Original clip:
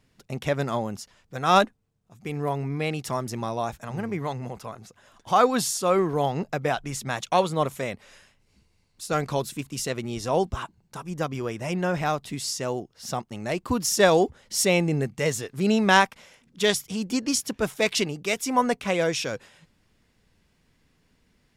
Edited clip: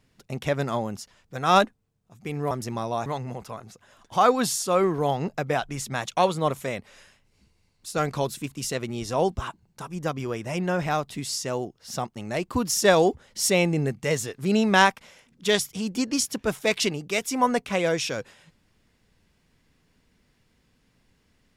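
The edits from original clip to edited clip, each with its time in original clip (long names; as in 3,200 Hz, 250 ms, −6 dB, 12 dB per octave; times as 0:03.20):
0:02.51–0:03.17: remove
0:03.72–0:04.21: remove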